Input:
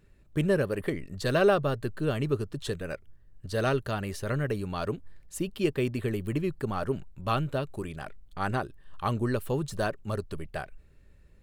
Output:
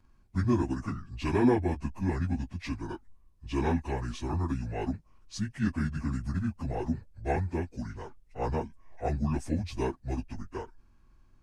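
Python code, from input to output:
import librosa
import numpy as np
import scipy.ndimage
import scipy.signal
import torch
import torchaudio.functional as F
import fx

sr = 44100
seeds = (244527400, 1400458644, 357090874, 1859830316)

y = fx.pitch_bins(x, sr, semitones=-8.5)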